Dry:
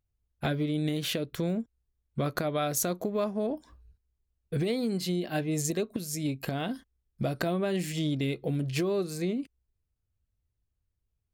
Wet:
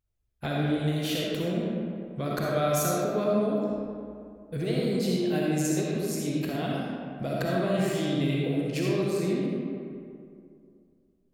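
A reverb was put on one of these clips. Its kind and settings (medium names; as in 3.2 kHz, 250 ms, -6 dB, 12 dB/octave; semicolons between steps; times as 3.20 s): algorithmic reverb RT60 2.4 s, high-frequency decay 0.5×, pre-delay 20 ms, DRR -4.5 dB; trim -3 dB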